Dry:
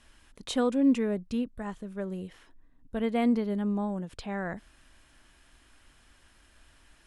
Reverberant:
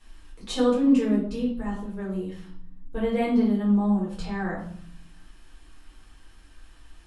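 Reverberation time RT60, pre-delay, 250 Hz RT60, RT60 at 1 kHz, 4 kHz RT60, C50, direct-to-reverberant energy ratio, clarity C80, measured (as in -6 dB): 0.60 s, 3 ms, 1.0 s, 0.60 s, 0.50 s, 5.0 dB, -7.0 dB, 9.0 dB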